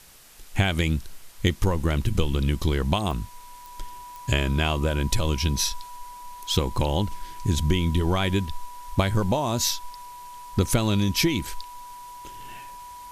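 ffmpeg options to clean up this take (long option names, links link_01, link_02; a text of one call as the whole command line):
ffmpeg -i in.wav -af "adeclick=threshold=4,bandreject=frequency=980:width=30,afftdn=noise_reduction=28:noise_floor=-42" out.wav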